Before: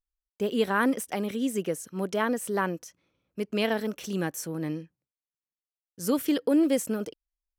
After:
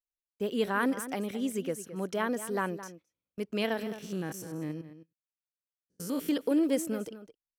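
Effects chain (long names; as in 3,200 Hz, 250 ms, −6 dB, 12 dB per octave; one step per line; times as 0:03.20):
0:03.83–0:06.29: spectrum averaged block by block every 100 ms
slap from a distant wall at 37 metres, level −13 dB
noise gate −49 dBFS, range −15 dB
level −4 dB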